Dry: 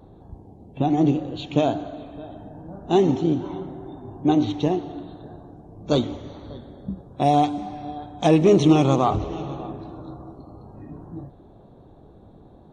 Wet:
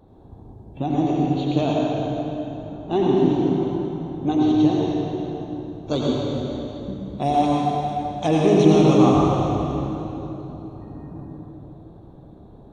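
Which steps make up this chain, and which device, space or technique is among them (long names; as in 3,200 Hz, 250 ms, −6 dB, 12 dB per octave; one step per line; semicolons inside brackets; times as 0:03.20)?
0:02.49–0:03.19: low-pass filter 2,900 Hz → 4,500 Hz 12 dB per octave
stairwell (convolution reverb RT60 3.0 s, pre-delay 77 ms, DRR −4 dB)
level −4 dB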